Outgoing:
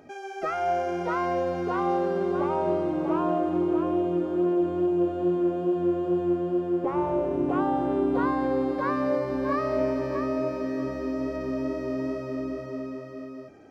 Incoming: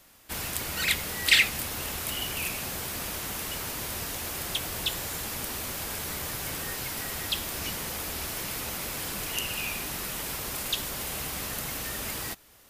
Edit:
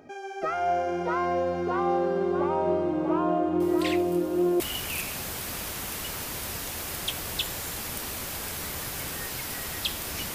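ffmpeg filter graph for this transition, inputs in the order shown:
ffmpeg -i cue0.wav -i cue1.wav -filter_complex "[1:a]asplit=2[link_01][link_02];[0:a]apad=whole_dur=10.34,atrim=end=10.34,atrim=end=4.602[link_03];[link_02]atrim=start=2.068:end=7.81[link_04];[link_01]atrim=start=1.07:end=2.07,asetpts=PTS-STARTPTS,volume=-15dB,afade=type=in:duration=0.004:curve=hsin,afade=type=out:start_time=0.996:duration=0.004:curve=hsin,adelay=3600[link_05];[link_03][link_04]acrossfade=duration=0.004:curve1=hsin:curve2=hsin[link_06];[link_06][link_05]amix=inputs=2:normalize=0" out.wav

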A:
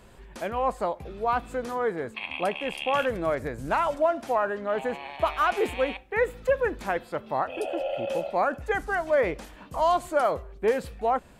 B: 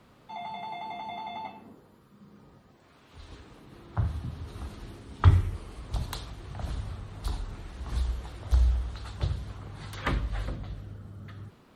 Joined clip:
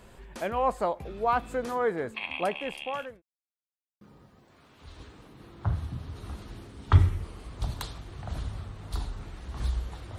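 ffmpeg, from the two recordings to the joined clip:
ffmpeg -i cue0.wav -i cue1.wav -filter_complex "[0:a]apad=whole_dur=10.18,atrim=end=10.18,asplit=2[link_01][link_02];[link_01]atrim=end=3.22,asetpts=PTS-STARTPTS,afade=type=out:start_time=2.03:duration=1.19:curve=qsin[link_03];[link_02]atrim=start=3.22:end=4.01,asetpts=PTS-STARTPTS,volume=0[link_04];[1:a]atrim=start=2.33:end=8.5,asetpts=PTS-STARTPTS,afade=type=in:duration=0.004:curve=hsin[link_05];[link_03][link_04][link_05]concat=n=3:v=0:a=1" out.wav

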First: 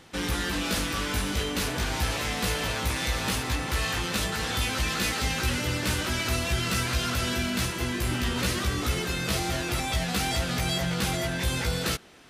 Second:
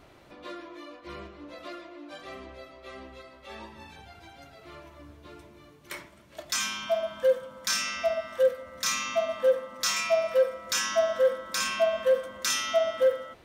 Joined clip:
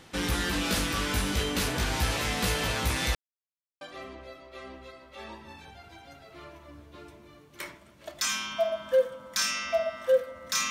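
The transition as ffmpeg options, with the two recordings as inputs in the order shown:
ffmpeg -i cue0.wav -i cue1.wav -filter_complex "[0:a]apad=whole_dur=10.7,atrim=end=10.7,asplit=2[link_01][link_02];[link_01]atrim=end=3.15,asetpts=PTS-STARTPTS,afade=type=out:start_time=3.146:duration=0.004:curve=hsin[link_03];[link_02]atrim=start=3.15:end=3.81,asetpts=PTS-STARTPTS,volume=0[link_04];[1:a]atrim=start=2.12:end=9.01,asetpts=PTS-STARTPTS,afade=type=in:duration=0.004:curve=hsin[link_05];[link_03][link_04][link_05]concat=n=3:v=0:a=1" out.wav

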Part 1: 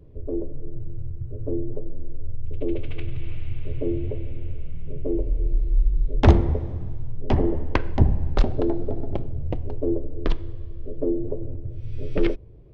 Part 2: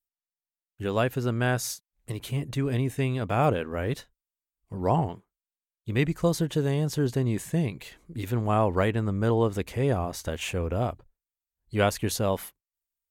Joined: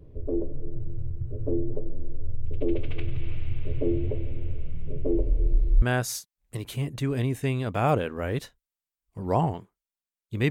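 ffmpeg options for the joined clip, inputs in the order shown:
ffmpeg -i cue0.wav -i cue1.wav -filter_complex "[0:a]apad=whole_dur=10.5,atrim=end=10.5,atrim=end=5.822[link_01];[1:a]atrim=start=1.368:end=6.05[link_02];[link_01][link_02]acrossfade=duration=0.004:curve1=hsin:curve2=hsin" out.wav

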